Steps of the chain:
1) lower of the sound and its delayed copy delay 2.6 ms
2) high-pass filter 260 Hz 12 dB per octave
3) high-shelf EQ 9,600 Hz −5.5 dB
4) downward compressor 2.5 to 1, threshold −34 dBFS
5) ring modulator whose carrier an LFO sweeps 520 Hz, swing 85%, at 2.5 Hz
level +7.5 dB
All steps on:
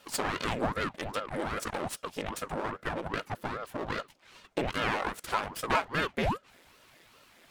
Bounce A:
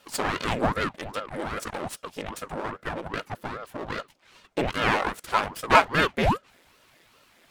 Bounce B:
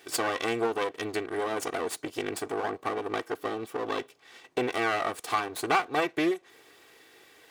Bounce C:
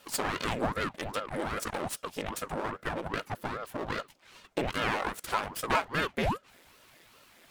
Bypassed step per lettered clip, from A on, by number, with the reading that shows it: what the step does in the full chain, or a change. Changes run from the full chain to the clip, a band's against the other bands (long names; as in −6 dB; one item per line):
4, change in crest factor +5.0 dB
5, 125 Hz band −9.5 dB
3, 8 kHz band +2.0 dB